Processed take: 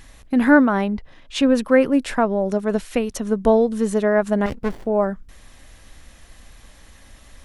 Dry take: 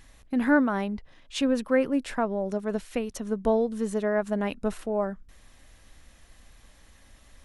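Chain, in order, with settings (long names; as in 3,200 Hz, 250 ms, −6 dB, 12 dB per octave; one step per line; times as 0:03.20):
0:00.65–0:01.50: high-shelf EQ 4,600 Hz −5.5 dB
0:04.46–0:04.86: windowed peak hold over 33 samples
level +8 dB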